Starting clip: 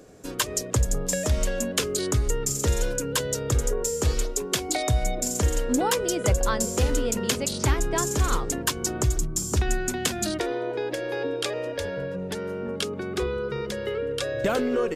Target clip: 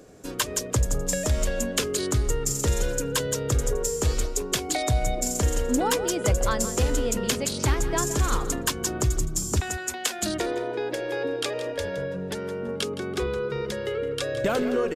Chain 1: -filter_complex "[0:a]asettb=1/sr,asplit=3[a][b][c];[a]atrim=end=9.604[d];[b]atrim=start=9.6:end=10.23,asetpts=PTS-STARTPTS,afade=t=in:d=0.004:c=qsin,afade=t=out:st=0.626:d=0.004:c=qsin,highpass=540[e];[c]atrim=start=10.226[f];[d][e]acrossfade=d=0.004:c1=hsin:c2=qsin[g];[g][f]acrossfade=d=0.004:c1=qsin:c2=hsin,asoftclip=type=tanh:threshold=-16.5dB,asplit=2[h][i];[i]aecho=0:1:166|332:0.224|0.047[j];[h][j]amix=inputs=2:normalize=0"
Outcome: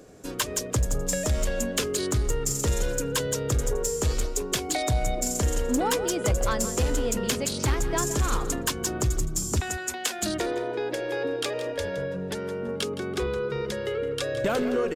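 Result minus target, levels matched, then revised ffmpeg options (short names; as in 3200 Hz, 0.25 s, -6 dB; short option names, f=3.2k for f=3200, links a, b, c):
soft clip: distortion +11 dB
-filter_complex "[0:a]asettb=1/sr,asplit=3[a][b][c];[a]atrim=end=9.604[d];[b]atrim=start=9.6:end=10.23,asetpts=PTS-STARTPTS,afade=t=in:d=0.004:c=qsin,afade=t=out:st=0.626:d=0.004:c=qsin,highpass=540[e];[c]atrim=start=10.226[f];[d][e]acrossfade=d=0.004:c1=hsin:c2=qsin[g];[g][f]acrossfade=d=0.004:c1=qsin:c2=hsin,asoftclip=type=tanh:threshold=-9.5dB,asplit=2[h][i];[i]aecho=0:1:166|332:0.224|0.047[j];[h][j]amix=inputs=2:normalize=0"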